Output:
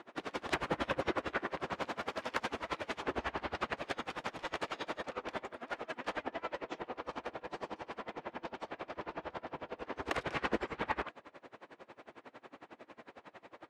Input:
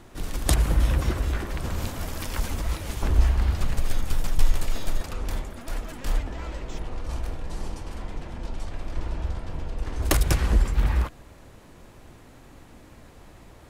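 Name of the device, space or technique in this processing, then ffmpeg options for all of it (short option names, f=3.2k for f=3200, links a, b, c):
helicopter radio: -af "highpass=390,lowpass=2.7k,aeval=exprs='val(0)*pow(10,-26*(0.5-0.5*cos(2*PI*11*n/s))/20)':c=same,asoftclip=type=hard:threshold=-28dB,volume=6.5dB"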